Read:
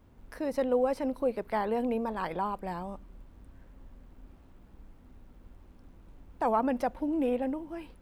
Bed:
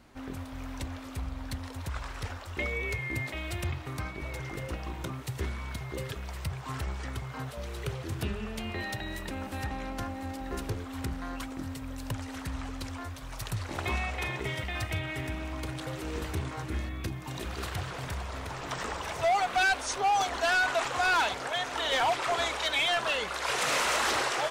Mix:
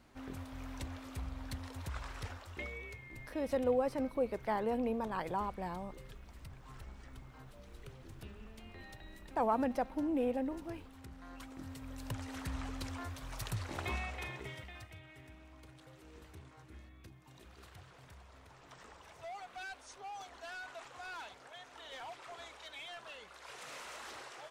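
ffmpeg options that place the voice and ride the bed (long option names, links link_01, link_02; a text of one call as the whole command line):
ffmpeg -i stem1.wav -i stem2.wav -filter_complex "[0:a]adelay=2950,volume=-4.5dB[link_01];[1:a]volume=7.5dB,afade=type=out:start_time=2.16:duration=0.84:silence=0.266073,afade=type=in:start_time=11.07:duration=1.45:silence=0.211349,afade=type=out:start_time=13.4:duration=1.52:silence=0.149624[link_02];[link_01][link_02]amix=inputs=2:normalize=0" out.wav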